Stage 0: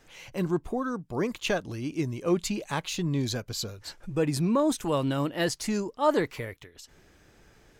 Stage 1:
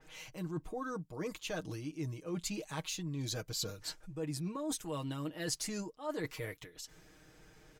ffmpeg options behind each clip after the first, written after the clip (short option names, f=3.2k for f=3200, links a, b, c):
-af "aecho=1:1:6.4:0.68,areverse,acompressor=threshold=-33dB:ratio=5,areverse,adynamicequalizer=threshold=0.00282:dfrequency=4100:dqfactor=0.7:tfrequency=4100:tqfactor=0.7:attack=5:release=100:ratio=0.375:range=2.5:mode=boostabove:tftype=highshelf,volume=-4dB"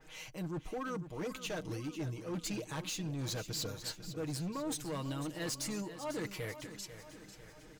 -filter_complex "[0:a]volume=36dB,asoftclip=hard,volume=-36dB,asplit=2[a][b];[b]aecho=0:1:496|992|1488|1984|2480|2976:0.251|0.136|0.0732|0.0396|0.0214|0.0115[c];[a][c]amix=inputs=2:normalize=0,volume=1.5dB"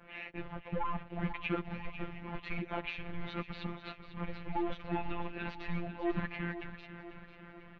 -af "acrusher=bits=3:mode=log:mix=0:aa=0.000001,highpass=f=190:t=q:w=0.5412,highpass=f=190:t=q:w=1.307,lowpass=f=3.1k:t=q:w=0.5176,lowpass=f=3.1k:t=q:w=0.7071,lowpass=f=3.1k:t=q:w=1.932,afreqshift=-250,afftfilt=real='hypot(re,im)*cos(PI*b)':imag='0':win_size=1024:overlap=0.75,volume=9dB"